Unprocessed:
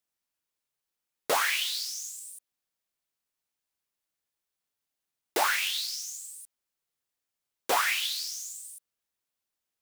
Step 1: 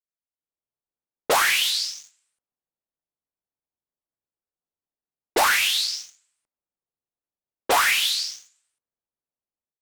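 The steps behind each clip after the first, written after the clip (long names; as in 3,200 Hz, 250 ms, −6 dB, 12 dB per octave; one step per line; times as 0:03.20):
low-pass that shuts in the quiet parts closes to 820 Hz, open at −26 dBFS
leveller curve on the samples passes 2
automatic gain control gain up to 11.5 dB
level −8.5 dB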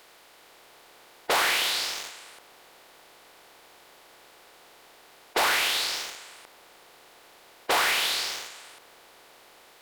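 compressor on every frequency bin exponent 0.4
level −9 dB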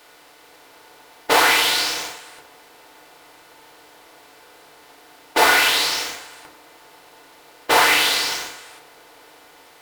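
in parallel at −8 dB: bit-depth reduction 6 bits, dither none
on the sum: feedback delay network reverb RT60 0.54 s, low-frequency decay 0.95×, high-frequency decay 0.55×, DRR −3 dB
floating-point word with a short mantissa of 2 bits
level +1 dB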